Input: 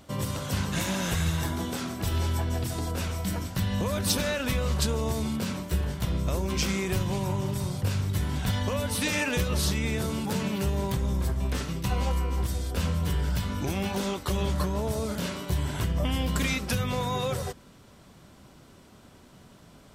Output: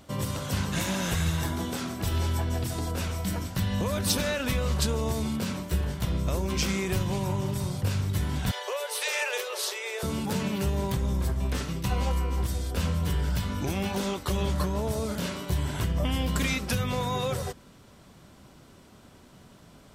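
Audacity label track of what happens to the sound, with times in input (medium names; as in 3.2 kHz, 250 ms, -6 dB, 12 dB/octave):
8.510000	10.030000	Chebyshev high-pass 380 Hz, order 10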